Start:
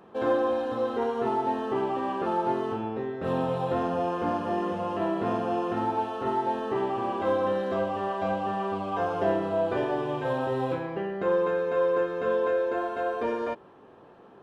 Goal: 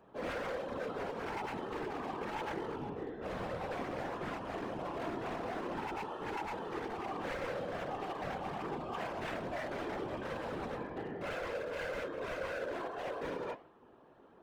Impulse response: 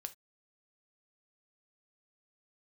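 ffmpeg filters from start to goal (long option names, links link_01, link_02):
-af "flanger=delay=7.3:depth=9.9:regen=-81:speed=1.6:shape=triangular,aeval=exprs='0.0335*(abs(mod(val(0)/0.0335+3,4)-2)-1)':channel_layout=same,afftfilt=real='hypot(re,im)*cos(2*PI*random(0))':imag='hypot(re,im)*sin(2*PI*random(1))':win_size=512:overlap=0.75,volume=1.5dB"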